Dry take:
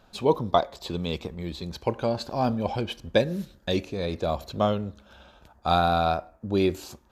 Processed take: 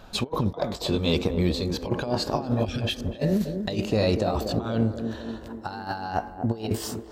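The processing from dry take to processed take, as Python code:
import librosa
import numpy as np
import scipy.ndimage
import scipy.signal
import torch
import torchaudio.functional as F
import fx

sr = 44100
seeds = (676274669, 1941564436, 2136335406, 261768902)

y = fx.pitch_glide(x, sr, semitones=2.5, runs='starting unshifted')
y = fx.low_shelf(y, sr, hz=66.0, db=4.5)
y = fx.over_compress(y, sr, threshold_db=-30.0, ratio=-0.5)
y = fx.spec_erase(y, sr, start_s=2.65, length_s=0.29, low_hz=210.0, high_hz=1200.0)
y = fx.echo_banded(y, sr, ms=241, feedback_pct=70, hz=330.0, wet_db=-6)
y = F.gain(torch.from_numpy(y), 5.0).numpy()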